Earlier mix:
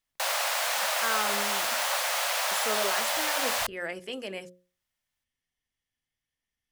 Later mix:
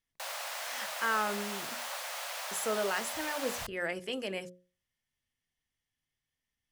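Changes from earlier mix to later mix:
background -11.0 dB; master: add peaking EQ 130 Hz +3 dB 1.2 oct

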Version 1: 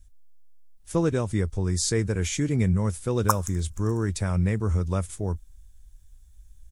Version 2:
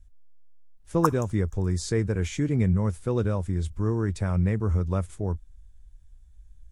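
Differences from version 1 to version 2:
background: entry -2.25 s; master: add treble shelf 3.5 kHz -11.5 dB

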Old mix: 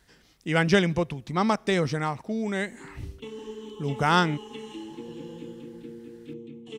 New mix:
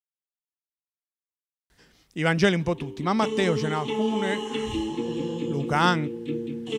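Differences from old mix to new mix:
speech: entry +1.70 s; background +10.5 dB

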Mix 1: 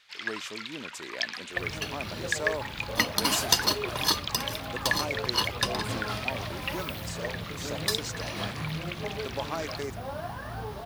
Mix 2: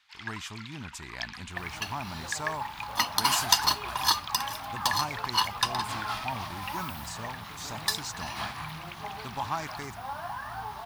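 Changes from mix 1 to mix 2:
speech: remove high-pass 410 Hz 12 dB/octave; first sound -7.0 dB; master: add resonant low shelf 670 Hz -8.5 dB, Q 3

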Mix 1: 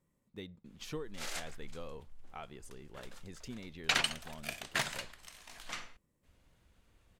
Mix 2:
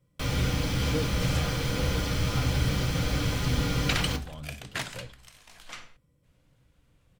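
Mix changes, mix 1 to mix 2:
speech +4.5 dB; first sound: unmuted; reverb: on, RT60 0.40 s

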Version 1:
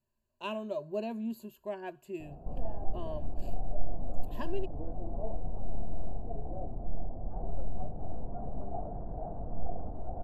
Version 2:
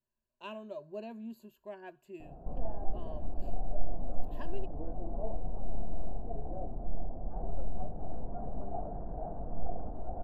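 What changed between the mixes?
speech -7.0 dB; master: add fifteen-band graphic EQ 100 Hz -6 dB, 1.6 kHz +3 dB, 10 kHz -6 dB

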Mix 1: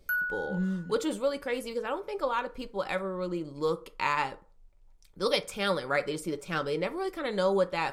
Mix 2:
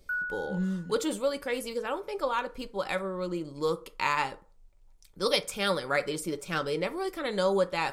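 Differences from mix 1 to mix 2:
background: add band-pass filter 1.2 kHz, Q 2.3; master: add treble shelf 4.4 kHz +6 dB

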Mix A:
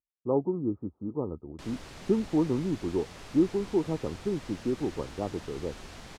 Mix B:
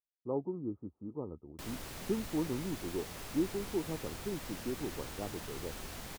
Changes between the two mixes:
speech -8.5 dB; background: remove low-pass 6.7 kHz 12 dB/octave

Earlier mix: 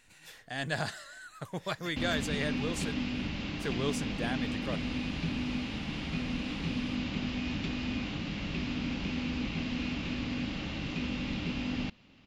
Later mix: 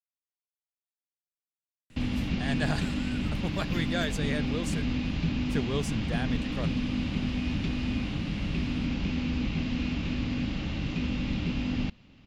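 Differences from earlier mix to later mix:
speech: entry +1.90 s; master: add bass shelf 190 Hz +9.5 dB

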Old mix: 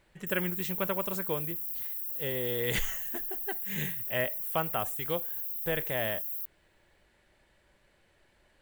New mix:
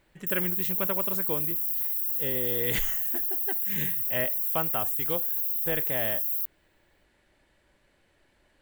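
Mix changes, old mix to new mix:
speech: add peaking EQ 280 Hz +6.5 dB 0.3 oct; background +7.5 dB

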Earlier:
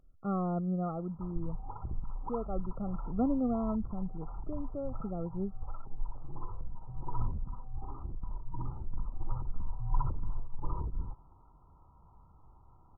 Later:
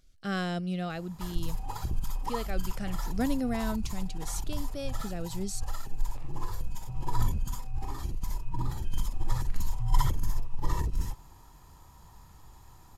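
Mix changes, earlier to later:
background +6.0 dB; master: remove brick-wall FIR low-pass 1.4 kHz

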